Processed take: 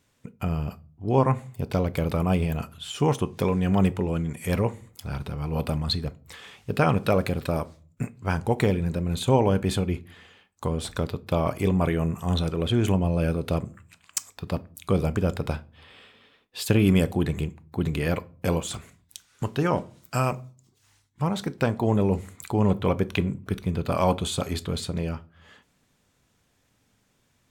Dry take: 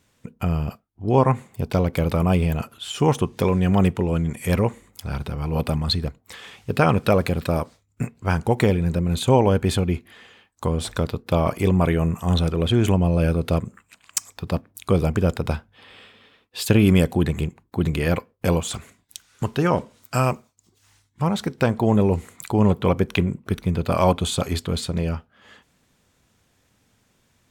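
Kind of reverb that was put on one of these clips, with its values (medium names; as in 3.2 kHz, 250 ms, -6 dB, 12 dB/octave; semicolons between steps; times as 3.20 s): simulated room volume 270 m³, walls furnished, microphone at 0.32 m; trim -4 dB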